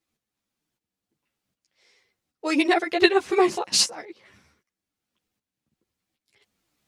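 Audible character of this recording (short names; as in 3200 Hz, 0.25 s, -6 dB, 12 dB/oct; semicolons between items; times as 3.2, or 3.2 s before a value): tremolo saw up 1.3 Hz, depth 70%; a shimmering, thickened sound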